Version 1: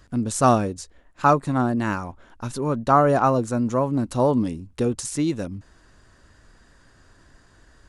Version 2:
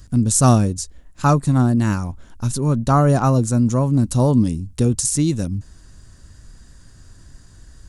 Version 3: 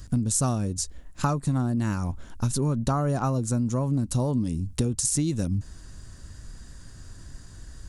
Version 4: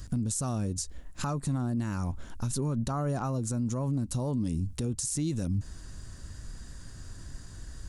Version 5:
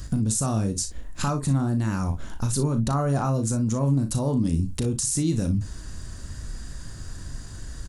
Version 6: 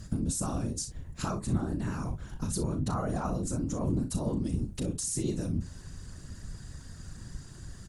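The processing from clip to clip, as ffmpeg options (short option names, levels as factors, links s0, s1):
-af "bass=f=250:g=14,treble=f=4000:g=14,volume=0.794"
-af "acompressor=threshold=0.0794:ratio=12,volume=1.12"
-af "alimiter=limit=0.0794:level=0:latency=1:release=100"
-af "aecho=1:1:36|59:0.398|0.211,volume=2"
-af "afftfilt=real='hypot(re,im)*cos(2*PI*random(0))':imag='hypot(re,im)*sin(2*PI*random(1))':win_size=512:overlap=0.75,volume=0.841"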